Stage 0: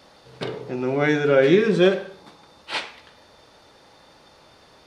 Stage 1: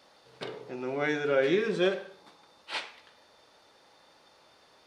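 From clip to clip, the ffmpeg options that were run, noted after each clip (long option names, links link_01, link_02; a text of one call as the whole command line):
ffmpeg -i in.wav -af "lowshelf=frequency=210:gain=-11.5,volume=-7dB" out.wav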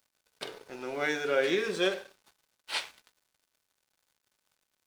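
ffmpeg -i in.wav -af "aemphasis=mode=production:type=bsi,aeval=exprs='val(0)+0.00126*sin(2*PI*1500*n/s)':channel_layout=same,aeval=exprs='sgn(val(0))*max(abs(val(0))-0.00316,0)':channel_layout=same" out.wav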